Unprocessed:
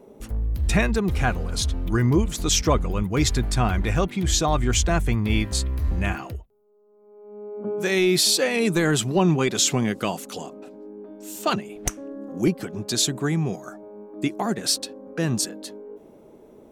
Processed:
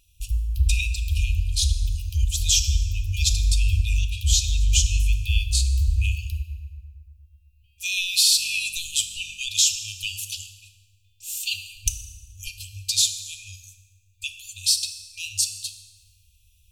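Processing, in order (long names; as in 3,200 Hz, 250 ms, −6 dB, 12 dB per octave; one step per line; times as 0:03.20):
brick-wall band-stop 100–2,400 Hz
in parallel at +1 dB: downward compressor, threshold −31 dBFS, peak gain reduction 13.5 dB
on the sum: feedback delay network reverb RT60 2.2 s, low-frequency decay 1.1×, high-frequency decay 0.5×, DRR 5.5 dB
0:08.31–0:09.37: hum with harmonics 50 Hz, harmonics 4, −58 dBFS −4 dB per octave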